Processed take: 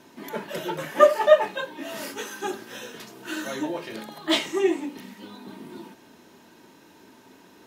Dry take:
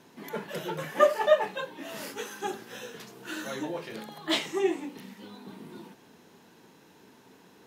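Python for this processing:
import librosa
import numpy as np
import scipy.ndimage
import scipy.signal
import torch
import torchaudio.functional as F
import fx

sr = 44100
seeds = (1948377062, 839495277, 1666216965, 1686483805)

y = x + 0.35 * np.pad(x, (int(3.2 * sr / 1000.0), 0))[:len(x)]
y = y * librosa.db_to_amplitude(3.5)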